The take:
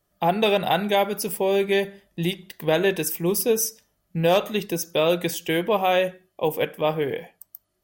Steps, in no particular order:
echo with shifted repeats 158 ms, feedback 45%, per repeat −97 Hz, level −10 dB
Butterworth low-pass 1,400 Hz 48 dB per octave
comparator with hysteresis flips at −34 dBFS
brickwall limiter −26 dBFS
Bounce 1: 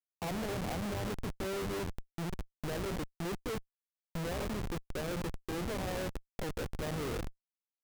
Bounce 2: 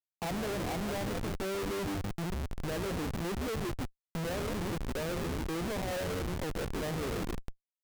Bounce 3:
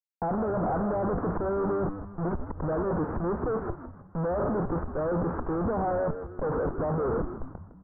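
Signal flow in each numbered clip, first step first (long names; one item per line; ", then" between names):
brickwall limiter, then Butterworth low-pass, then echo with shifted repeats, then comparator with hysteresis
echo with shifted repeats, then Butterworth low-pass, then brickwall limiter, then comparator with hysteresis
comparator with hysteresis, then brickwall limiter, then echo with shifted repeats, then Butterworth low-pass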